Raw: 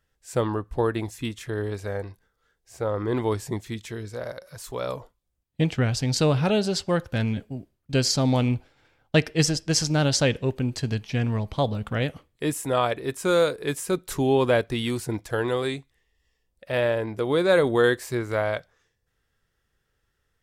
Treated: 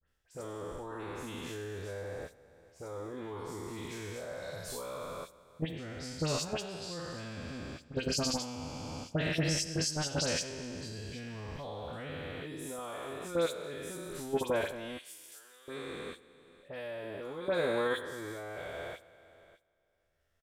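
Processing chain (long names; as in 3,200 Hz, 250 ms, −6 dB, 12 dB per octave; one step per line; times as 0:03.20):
peak hold with a decay on every bin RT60 2.00 s
output level in coarse steps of 18 dB
0:14.97–0:15.68: first difference
floating-point word with a short mantissa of 6 bits
all-pass dispersion highs, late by 70 ms, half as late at 2,800 Hz
brickwall limiter −17.5 dBFS, peak gain reduction 10 dB
double-tracking delay 12 ms −7 dB
level −6 dB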